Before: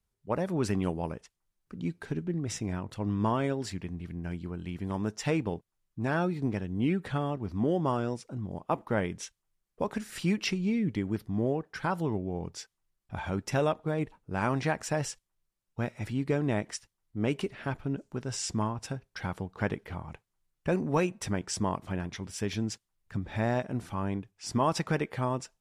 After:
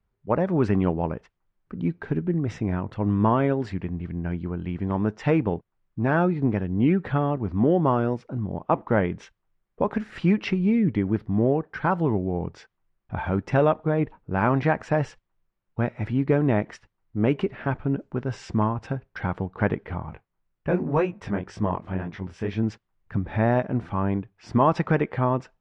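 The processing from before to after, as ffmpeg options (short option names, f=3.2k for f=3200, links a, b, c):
-filter_complex "[0:a]asettb=1/sr,asplit=3[a][b][c];[a]atrim=end=20.104[d];[b]atrim=start=20.1:end=22.63,asetpts=PTS-STARTPTS,afade=t=in:d=0.004:c=qsin,afade=t=out:st=2.526:d=0.004:c=qsin,flanger=delay=18:depth=6.5:speed=2[e];[c]atrim=start=22.626[f];[d][e]acrossfade=d=0.004:c1=hsin:c2=qsin[g];[g][f]acrossfade=d=0.004:c1=qsin:c2=hsin,lowpass=2k,volume=7.5dB"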